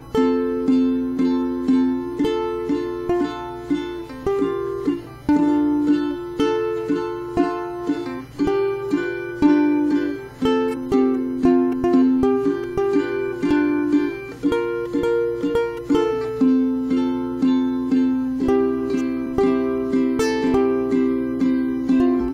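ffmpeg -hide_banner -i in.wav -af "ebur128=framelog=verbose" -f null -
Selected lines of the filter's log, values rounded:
Integrated loudness:
  I:         -20.6 LUFS
  Threshold: -30.7 LUFS
Loudness range:
  LRA:         3.4 LU
  Threshold: -40.8 LUFS
  LRA low:   -22.7 LUFS
  LRA high:  -19.3 LUFS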